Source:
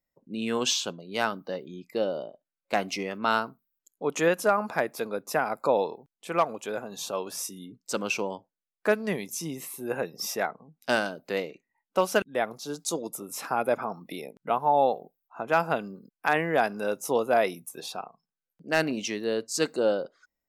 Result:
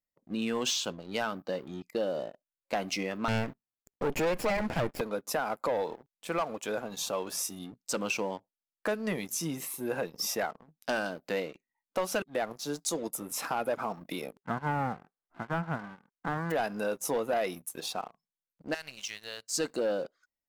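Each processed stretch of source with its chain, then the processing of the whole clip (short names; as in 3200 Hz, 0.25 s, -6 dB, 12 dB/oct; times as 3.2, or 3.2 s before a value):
3.28–5.01 minimum comb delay 0.41 ms + high shelf 2600 Hz -10.5 dB + sample leveller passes 2
14.39–16.5 spectral whitening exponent 0.1 + steep low-pass 1600 Hz
18.74–19.53 passive tone stack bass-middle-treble 10-0-10 + compressor 5:1, threshold -34 dBFS
whole clip: notch 400 Hz, Q 12; sample leveller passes 2; compressor 2.5:1, threshold -23 dBFS; gain -6 dB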